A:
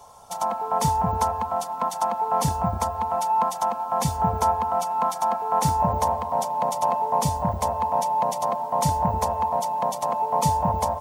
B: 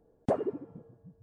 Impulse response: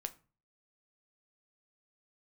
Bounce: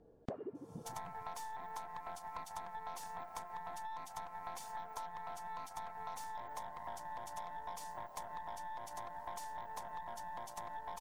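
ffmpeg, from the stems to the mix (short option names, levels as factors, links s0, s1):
-filter_complex "[0:a]highpass=730,aeval=exprs='0.282*(cos(1*acos(clip(val(0)/0.282,-1,1)))-cos(1*PI/2))+0.0224*(cos(8*acos(clip(val(0)/0.282,-1,1)))-cos(8*PI/2))':c=same,adelay=550,volume=0.178,asplit=2[s0][s1];[s1]volume=0.422[s2];[1:a]lowpass=5300,volume=1.19[s3];[2:a]atrim=start_sample=2205[s4];[s2][s4]afir=irnorm=-1:irlink=0[s5];[s0][s3][s5]amix=inputs=3:normalize=0,acompressor=threshold=0.00891:ratio=10"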